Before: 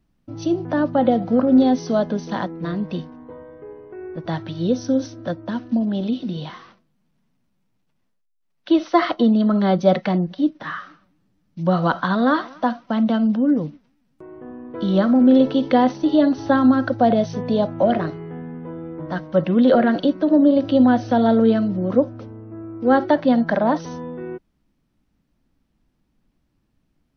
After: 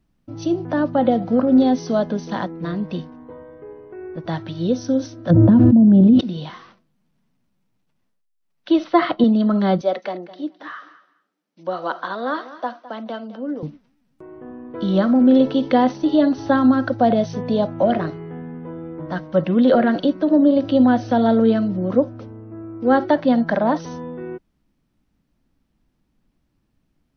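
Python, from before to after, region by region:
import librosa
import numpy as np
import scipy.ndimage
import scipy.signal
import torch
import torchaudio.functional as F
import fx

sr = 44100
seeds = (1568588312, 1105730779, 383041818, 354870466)

y = fx.dmg_crackle(x, sr, seeds[0], per_s=280.0, level_db=-52.0, at=(5.29, 6.19), fade=0.02)
y = fx.bandpass_q(y, sr, hz=110.0, q=0.8, at=(5.29, 6.19), fade=0.02)
y = fx.env_flatten(y, sr, amount_pct=100, at=(5.29, 6.19), fade=0.02)
y = fx.chain(y, sr, fx.lowpass(hz=4300.0, slope=24),
    fx.peak_eq(hz=160.0, db=8.5, octaves=1.1), at=(8.84, 9.24))
y = fx.chain(y, sr, fx.ladder_highpass(hz=280.0, resonance_pct=20),
    fx.echo_feedback(ms=210, feedback_pct=18, wet_db=-16), at=(9.81, 13.63))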